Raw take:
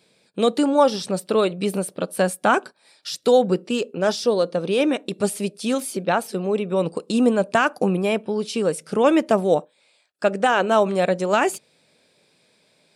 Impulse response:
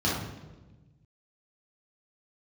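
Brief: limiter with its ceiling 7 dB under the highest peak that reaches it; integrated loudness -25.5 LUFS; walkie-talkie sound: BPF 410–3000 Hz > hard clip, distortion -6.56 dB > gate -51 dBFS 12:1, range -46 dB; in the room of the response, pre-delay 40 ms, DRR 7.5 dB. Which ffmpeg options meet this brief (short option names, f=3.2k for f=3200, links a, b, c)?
-filter_complex "[0:a]alimiter=limit=-11dB:level=0:latency=1,asplit=2[a][b];[1:a]atrim=start_sample=2205,adelay=40[c];[b][c]afir=irnorm=-1:irlink=0,volume=-19.5dB[d];[a][d]amix=inputs=2:normalize=0,highpass=410,lowpass=3k,asoftclip=type=hard:threshold=-24.5dB,agate=range=-46dB:threshold=-51dB:ratio=12,volume=3.5dB"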